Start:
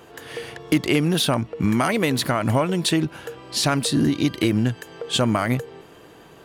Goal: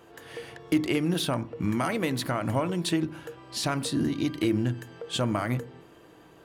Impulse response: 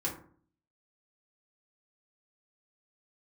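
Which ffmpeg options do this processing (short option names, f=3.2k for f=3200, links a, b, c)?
-filter_complex "[0:a]asplit=2[a][b];[1:a]atrim=start_sample=2205,lowpass=2.6k[c];[b][c]afir=irnorm=-1:irlink=0,volume=-13dB[d];[a][d]amix=inputs=2:normalize=0,volume=-8.5dB"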